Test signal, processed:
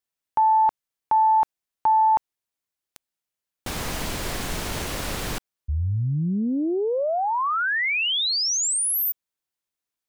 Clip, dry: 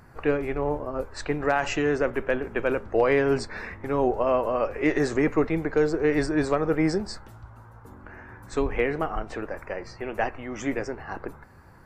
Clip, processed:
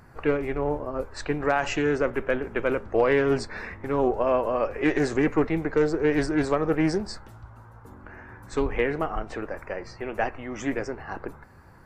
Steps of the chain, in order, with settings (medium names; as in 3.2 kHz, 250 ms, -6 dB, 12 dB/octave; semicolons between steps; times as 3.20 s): loudspeaker Doppler distortion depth 0.18 ms